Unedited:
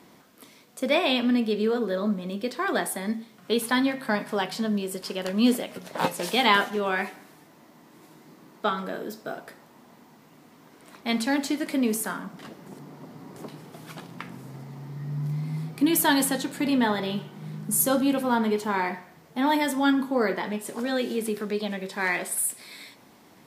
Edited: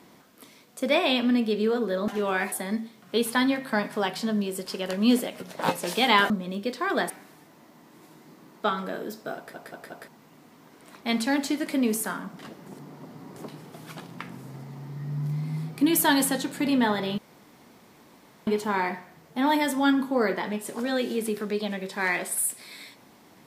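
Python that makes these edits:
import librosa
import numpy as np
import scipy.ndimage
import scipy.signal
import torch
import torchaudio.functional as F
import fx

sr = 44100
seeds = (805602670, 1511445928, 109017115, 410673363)

y = fx.edit(x, sr, fx.swap(start_s=2.08, length_s=0.8, other_s=6.66, other_length_s=0.44),
    fx.stutter_over(start_s=9.36, slice_s=0.18, count=4),
    fx.room_tone_fill(start_s=17.18, length_s=1.29), tone=tone)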